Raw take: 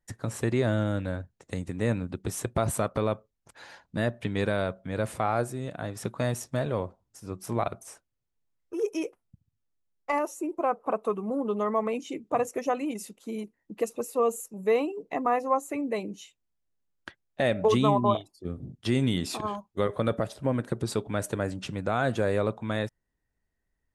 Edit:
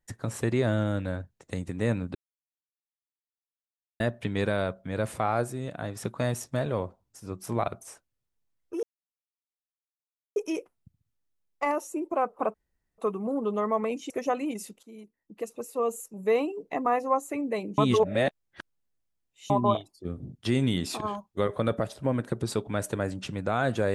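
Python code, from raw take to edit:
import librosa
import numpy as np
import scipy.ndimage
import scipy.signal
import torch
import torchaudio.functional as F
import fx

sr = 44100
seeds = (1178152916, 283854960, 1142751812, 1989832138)

y = fx.edit(x, sr, fx.silence(start_s=2.15, length_s=1.85),
    fx.insert_silence(at_s=8.83, length_s=1.53),
    fx.insert_room_tone(at_s=11.01, length_s=0.44),
    fx.cut(start_s=12.13, length_s=0.37),
    fx.fade_in_from(start_s=13.23, length_s=1.56, floor_db=-14.5),
    fx.reverse_span(start_s=16.18, length_s=1.72), tone=tone)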